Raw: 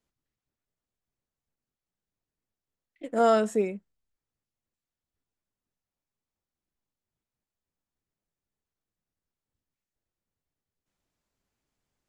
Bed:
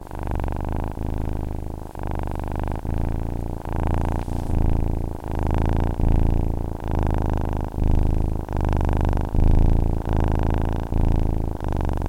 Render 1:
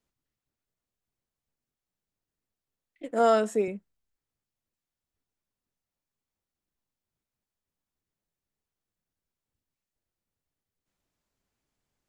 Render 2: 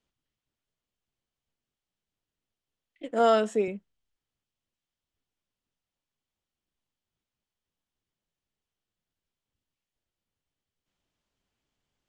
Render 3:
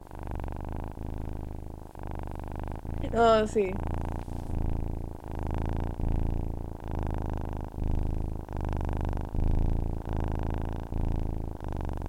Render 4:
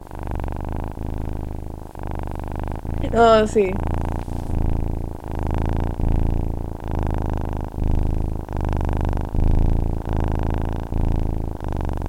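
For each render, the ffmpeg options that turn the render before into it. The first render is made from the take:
ffmpeg -i in.wav -filter_complex "[0:a]asettb=1/sr,asplit=3[link_01][link_02][link_03];[link_01]atrim=end=3.114[link_04];[link_02]atrim=start=3.11:end=3.68,asetpts=PTS-STARTPTS,afade=type=in:duration=0.004:curve=qsin,afade=type=out:start_time=0.566:duration=0.004:curve=qsin,highpass=210[link_05];[link_03]atrim=start=3.676[link_06];[link_04][link_05]acrossfade=duration=0.004:curve1=hsin:curve2=qsin[link_07];[link_07][link_06]acrossfade=duration=0.004:curve1=qsin:curve2=hsin" out.wav
ffmpeg -i in.wav -af "lowpass=7500,equalizer=frequency=3100:width=3.4:gain=6.5" out.wav
ffmpeg -i in.wav -i bed.wav -filter_complex "[1:a]volume=-10dB[link_01];[0:a][link_01]amix=inputs=2:normalize=0" out.wav
ffmpeg -i in.wav -af "volume=9dB,alimiter=limit=-3dB:level=0:latency=1" out.wav

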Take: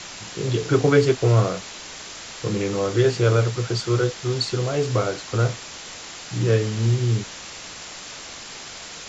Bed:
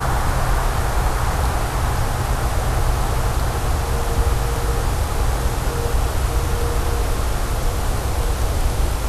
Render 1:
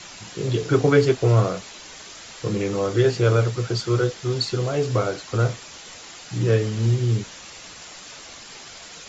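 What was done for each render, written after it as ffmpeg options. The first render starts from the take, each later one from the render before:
ffmpeg -i in.wav -af "afftdn=noise_reduction=6:noise_floor=-38" out.wav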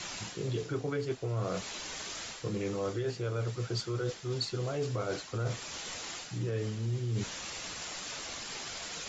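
ffmpeg -i in.wav -af "alimiter=limit=-14dB:level=0:latency=1:release=346,areverse,acompressor=threshold=-31dB:ratio=6,areverse" out.wav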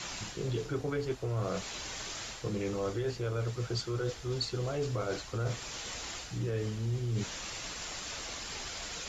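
ffmpeg -i in.wav -i bed.wav -filter_complex "[1:a]volume=-33.5dB[link_01];[0:a][link_01]amix=inputs=2:normalize=0" out.wav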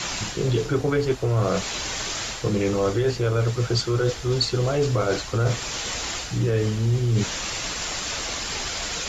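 ffmpeg -i in.wav -af "volume=11.5dB" out.wav

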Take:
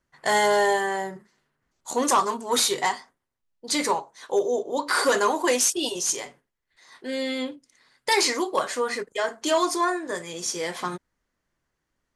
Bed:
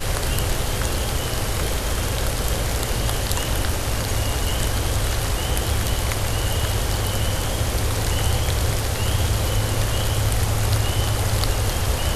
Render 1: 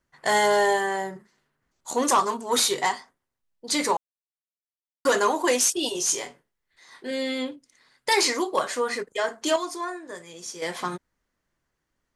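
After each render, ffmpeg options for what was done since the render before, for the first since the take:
ffmpeg -i in.wav -filter_complex "[0:a]asettb=1/sr,asplit=3[link_01][link_02][link_03];[link_01]atrim=end=5.924[link_04];[link_02]atrim=start=5.92:end=7.11,asetpts=PTS-STARTPTS,afade=type=in:duration=0.004:curve=qsin,afade=type=out:start_time=1.186:duration=0.004:curve=qsin,asplit=2[link_05][link_06];[link_06]adelay=25,volume=-6dB[link_07];[link_05][link_07]amix=inputs=2:normalize=0,atrim=end_sample=52479[link_08];[link_03]atrim=start=7.106[link_09];[link_04][link_08]acrossfade=duration=0.004:curve1=hsin:curve2=qsin[link_10];[link_10][link_09]acrossfade=duration=0.004:curve1=qsin:curve2=hsin,asplit=5[link_11][link_12][link_13][link_14][link_15];[link_11]atrim=end=3.97,asetpts=PTS-STARTPTS,afade=type=out:start_time=3.966:duration=0.004:curve=hsin[link_16];[link_12]atrim=start=3.97:end=5.05,asetpts=PTS-STARTPTS,volume=0[link_17];[link_13]atrim=start=5.05:end=9.562,asetpts=PTS-STARTPTS,afade=type=in:duration=0.004:curve=hsin[link_18];[link_14]atrim=start=9.558:end=10.622,asetpts=PTS-STARTPTS,volume=-8dB[link_19];[link_15]atrim=start=10.618[link_20];[link_16][link_17][link_18]concat=n=3:v=0:a=1[link_21];[link_21][link_19]acrossfade=duration=0.004:curve1=hsin:curve2=hsin[link_22];[link_22][link_20]acrossfade=duration=0.004:curve1=hsin:curve2=hsin" out.wav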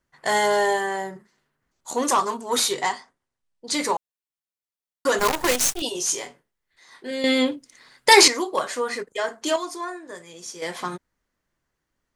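ffmpeg -i in.wav -filter_complex "[0:a]asettb=1/sr,asplit=3[link_01][link_02][link_03];[link_01]atrim=end=2.734[link_04];[link_02]atrim=start=2.73:end=3.74,asetpts=PTS-STARTPTS,afade=type=in:duration=0.004:curve=qsin,afade=type=out:start_time=1.006:duration=0.004:curve=qsin,lowpass=frequency=10000:width=0.5412,lowpass=frequency=10000:width=1.3066[link_05];[link_03]atrim=start=3.736[link_06];[link_04][link_05]acrossfade=duration=0.004:curve1=hsin:curve2=qsin[link_07];[link_07][link_06]acrossfade=duration=0.004:curve1=qsin:curve2=hsin,asettb=1/sr,asplit=3[link_08][link_09][link_10];[link_08]atrim=end=5.194[link_11];[link_09]atrim=start=5.19:end=5.82,asetpts=PTS-STARTPTS,afade=type=in:duration=0.004:curve=qsin,afade=type=out:start_time=0.626:duration=0.004:curve=qsin,acrusher=bits=4:dc=4:mix=0:aa=0.000001[link_12];[link_10]atrim=start=5.816[link_13];[link_11][link_12]acrossfade=duration=0.004:curve1=hsin:curve2=qsin[link_14];[link_14][link_13]acrossfade=duration=0.004:curve1=qsin:curve2=hsin,asplit=3[link_15][link_16][link_17];[link_15]atrim=end=7.242[link_18];[link_16]atrim=start=7.238:end=8.282,asetpts=PTS-STARTPTS,volume=9dB[link_19];[link_17]atrim=start=8.278[link_20];[link_18][link_19]acrossfade=duration=0.004:curve1=hsin:curve2=hsin[link_21];[link_21][link_20]acrossfade=duration=0.004:curve1=hsin:curve2=hsin" out.wav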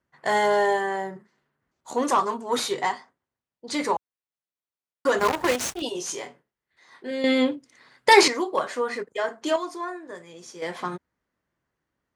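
ffmpeg -i in.wav -af "highpass=68,highshelf=frequency=4100:gain=-12" out.wav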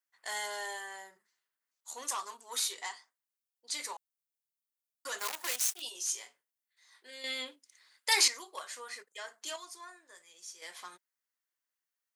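ffmpeg -i in.wav -af "highpass=frequency=250:poles=1,aderivative" out.wav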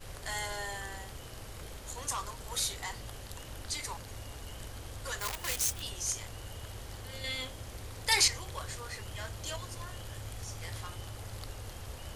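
ffmpeg -i in.wav -i bed.wav -filter_complex "[1:a]volume=-22dB[link_01];[0:a][link_01]amix=inputs=2:normalize=0" out.wav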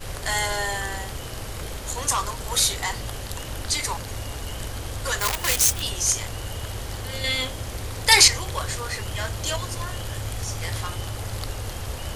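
ffmpeg -i in.wav -af "volume=12dB,alimiter=limit=-1dB:level=0:latency=1" out.wav

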